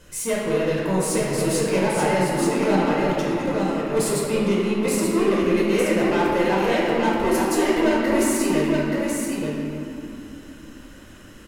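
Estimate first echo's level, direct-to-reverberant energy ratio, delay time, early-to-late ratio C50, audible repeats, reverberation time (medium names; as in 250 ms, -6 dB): -4.0 dB, -7.5 dB, 877 ms, -4.0 dB, 1, 3.0 s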